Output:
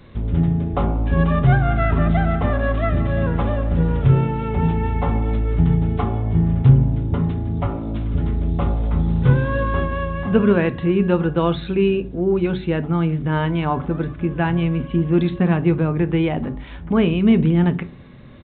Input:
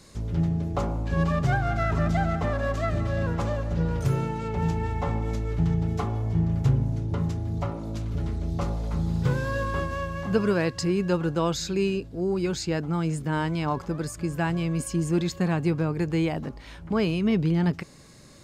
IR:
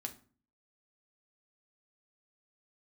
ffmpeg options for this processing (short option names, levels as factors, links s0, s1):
-filter_complex "[0:a]asplit=2[s0][s1];[1:a]atrim=start_sample=2205,lowshelf=f=290:g=9[s2];[s1][s2]afir=irnorm=-1:irlink=0,volume=1.12[s3];[s0][s3]amix=inputs=2:normalize=0,aresample=8000,aresample=44100"